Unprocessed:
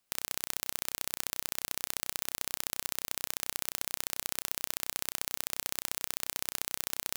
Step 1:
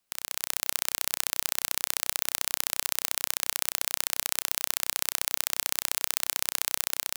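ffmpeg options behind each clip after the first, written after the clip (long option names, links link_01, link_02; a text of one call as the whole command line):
ffmpeg -i in.wav -filter_complex "[0:a]acrossover=split=660|1900[link_01][link_02][link_03];[link_01]alimiter=level_in=20.5dB:limit=-24dB:level=0:latency=1:release=14,volume=-20.5dB[link_04];[link_04][link_02][link_03]amix=inputs=3:normalize=0,dynaudnorm=framelen=170:gausssize=5:maxgain=11.5dB" out.wav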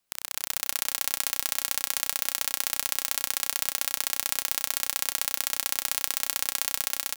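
ffmpeg -i in.wav -af "aecho=1:1:131|262|393|524|655|786|917:0.355|0.209|0.124|0.0729|0.043|0.0254|0.015" out.wav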